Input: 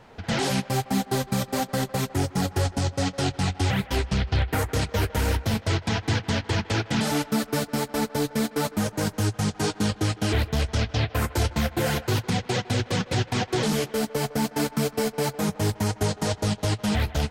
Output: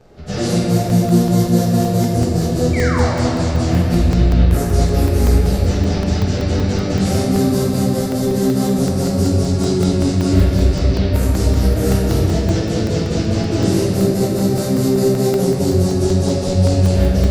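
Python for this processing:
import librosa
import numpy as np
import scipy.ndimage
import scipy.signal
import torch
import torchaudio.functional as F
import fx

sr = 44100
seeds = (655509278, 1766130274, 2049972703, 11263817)

y = fx.pitch_bins(x, sr, semitones=-2.0)
y = fx.band_shelf(y, sr, hz=1700.0, db=-9.0, octaves=2.5)
y = fx.spec_paint(y, sr, seeds[0], shape='fall', start_s=2.73, length_s=0.4, low_hz=530.0, high_hz=2400.0, level_db=-34.0)
y = fx.room_shoebox(y, sr, seeds[1], volume_m3=200.0, walls='hard', distance_m=0.87)
y = fx.buffer_crackle(y, sr, first_s=0.9, period_s=0.19, block=64, kind='zero')
y = y * librosa.db_to_amplitude(5.0)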